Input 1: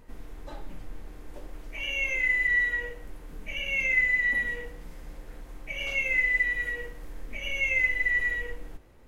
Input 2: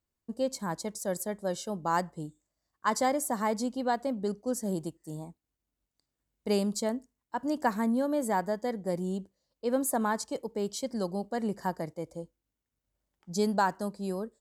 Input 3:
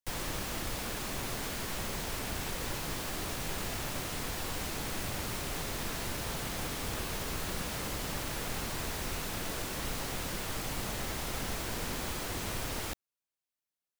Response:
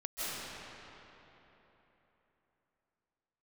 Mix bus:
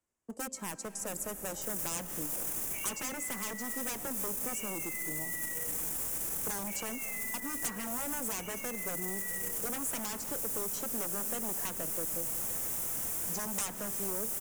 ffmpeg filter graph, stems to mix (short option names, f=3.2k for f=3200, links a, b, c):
-filter_complex "[0:a]acompressor=threshold=-33dB:ratio=6,adelay=1000,volume=-0.5dB[a];[1:a]lowpass=2.7k,lowshelf=f=150:g=-11,aeval=exprs='0.0266*(abs(mod(val(0)/0.0266+3,4)-2)-1)':c=same,volume=2.5dB,asplit=2[b][c];[c]volume=-19.5dB[d];[2:a]highshelf=f=4.4k:g=-6.5,adelay=1550,volume=-8.5dB[e];[a][e]amix=inputs=2:normalize=0,alimiter=level_in=10.5dB:limit=-24dB:level=0:latency=1:release=11,volume=-10.5dB,volume=0dB[f];[3:a]atrim=start_sample=2205[g];[d][g]afir=irnorm=-1:irlink=0[h];[b][f][h]amix=inputs=3:normalize=0,acrossover=split=90|320|4500[i][j][k][l];[i]acompressor=threshold=-56dB:ratio=4[m];[j]acompressor=threshold=-45dB:ratio=4[n];[k]acompressor=threshold=-41dB:ratio=4[o];[l]acompressor=threshold=-57dB:ratio=4[p];[m][n][o][p]amix=inputs=4:normalize=0,aexciter=amount=8.5:drive=9.1:freq=6.4k"